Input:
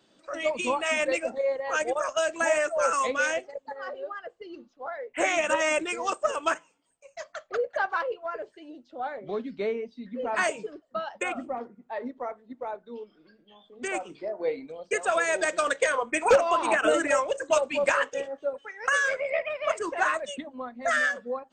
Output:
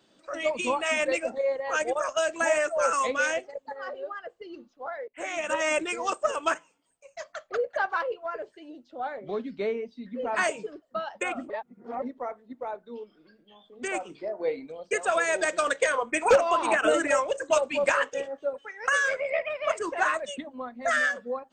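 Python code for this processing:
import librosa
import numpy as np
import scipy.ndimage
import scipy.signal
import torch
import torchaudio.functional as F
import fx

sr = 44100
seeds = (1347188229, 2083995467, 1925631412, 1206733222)

y = fx.edit(x, sr, fx.fade_in_from(start_s=5.08, length_s=0.68, floor_db=-19.0),
    fx.reverse_span(start_s=11.5, length_s=0.52), tone=tone)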